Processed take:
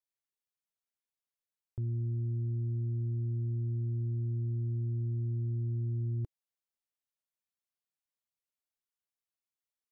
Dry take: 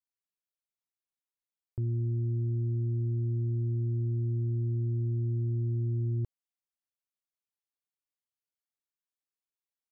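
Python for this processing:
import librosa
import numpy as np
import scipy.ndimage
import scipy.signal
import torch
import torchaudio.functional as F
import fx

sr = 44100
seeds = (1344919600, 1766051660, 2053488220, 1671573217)

y = fx.peak_eq(x, sr, hz=320.0, db=-8.5, octaves=0.23)
y = y * 10.0 ** (-3.0 / 20.0)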